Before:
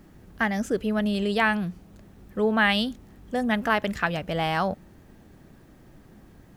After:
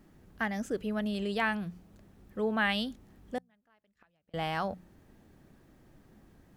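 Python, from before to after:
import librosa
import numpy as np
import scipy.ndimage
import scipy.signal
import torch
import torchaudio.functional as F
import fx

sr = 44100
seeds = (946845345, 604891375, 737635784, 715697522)

y = fx.gate_flip(x, sr, shuts_db=-24.0, range_db=-38, at=(3.38, 4.34))
y = fx.wow_flutter(y, sr, seeds[0], rate_hz=2.1, depth_cents=17.0)
y = fx.hum_notches(y, sr, base_hz=60, count=3)
y = y * librosa.db_to_amplitude(-7.5)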